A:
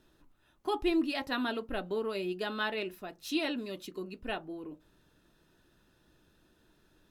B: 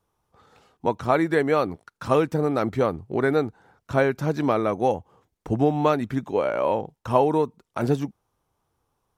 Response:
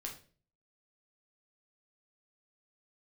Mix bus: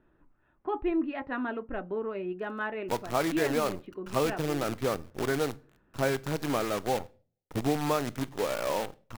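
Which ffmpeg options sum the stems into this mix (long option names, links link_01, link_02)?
-filter_complex "[0:a]lowpass=frequency=2100:width=0.5412,lowpass=frequency=2100:width=1.3066,volume=0.5dB[link_01];[1:a]acrusher=bits=5:dc=4:mix=0:aa=0.000001,adelay=2050,volume=-9dB,asplit=2[link_02][link_03];[link_03]volume=-11dB[link_04];[2:a]atrim=start_sample=2205[link_05];[link_04][link_05]afir=irnorm=-1:irlink=0[link_06];[link_01][link_02][link_06]amix=inputs=3:normalize=0"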